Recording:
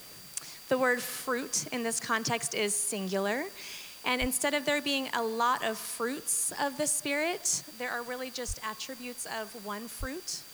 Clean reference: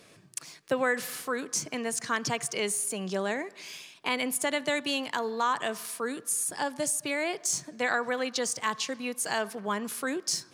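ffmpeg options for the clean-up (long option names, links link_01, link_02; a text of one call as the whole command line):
ffmpeg -i in.wav -filter_complex "[0:a]bandreject=frequency=4700:width=30,asplit=3[link_01][link_02][link_03];[link_01]afade=type=out:start_time=4.2:duration=0.02[link_04];[link_02]highpass=frequency=140:width=0.5412,highpass=frequency=140:width=1.3066,afade=type=in:start_time=4.2:duration=0.02,afade=type=out:start_time=4.32:duration=0.02[link_05];[link_03]afade=type=in:start_time=4.32:duration=0.02[link_06];[link_04][link_05][link_06]amix=inputs=3:normalize=0,asplit=3[link_07][link_08][link_09];[link_07]afade=type=out:start_time=8.47:duration=0.02[link_10];[link_08]highpass=frequency=140:width=0.5412,highpass=frequency=140:width=1.3066,afade=type=in:start_time=8.47:duration=0.02,afade=type=out:start_time=8.59:duration=0.02[link_11];[link_09]afade=type=in:start_time=8.59:duration=0.02[link_12];[link_10][link_11][link_12]amix=inputs=3:normalize=0,asplit=3[link_13][link_14][link_15];[link_13]afade=type=out:start_time=9.99:duration=0.02[link_16];[link_14]highpass=frequency=140:width=0.5412,highpass=frequency=140:width=1.3066,afade=type=in:start_time=9.99:duration=0.02,afade=type=out:start_time=10.11:duration=0.02[link_17];[link_15]afade=type=in:start_time=10.11:duration=0.02[link_18];[link_16][link_17][link_18]amix=inputs=3:normalize=0,afwtdn=0.0032,asetnsamples=nb_out_samples=441:pad=0,asendcmd='7.61 volume volume 7dB',volume=0dB" out.wav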